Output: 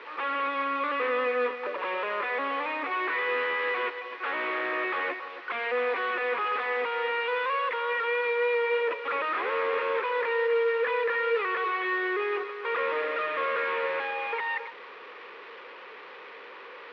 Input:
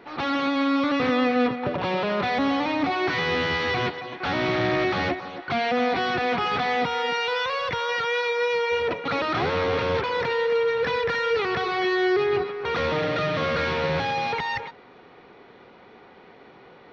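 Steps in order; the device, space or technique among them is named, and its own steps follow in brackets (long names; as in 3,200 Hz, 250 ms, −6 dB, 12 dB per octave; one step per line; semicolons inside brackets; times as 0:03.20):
digital answering machine (band-pass filter 390–3,100 Hz; linear delta modulator 32 kbit/s, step −36 dBFS; loudspeaker in its box 400–3,500 Hz, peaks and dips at 480 Hz +7 dB, 720 Hz −10 dB, 1,100 Hz +7 dB, 1,800 Hz +5 dB, 2,500 Hz +5 dB)
level −4.5 dB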